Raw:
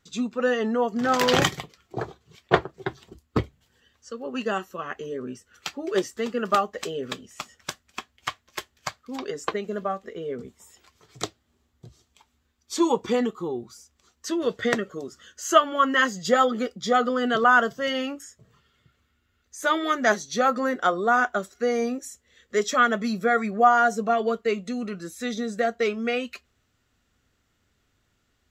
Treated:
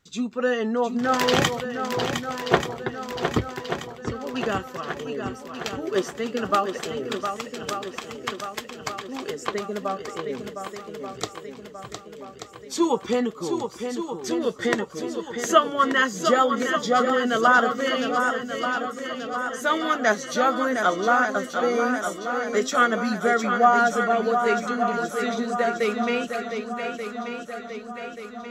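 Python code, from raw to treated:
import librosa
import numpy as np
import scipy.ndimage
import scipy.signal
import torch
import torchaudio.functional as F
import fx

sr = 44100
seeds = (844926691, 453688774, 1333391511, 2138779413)

y = fx.echo_swing(x, sr, ms=1183, ratio=1.5, feedback_pct=54, wet_db=-7.0)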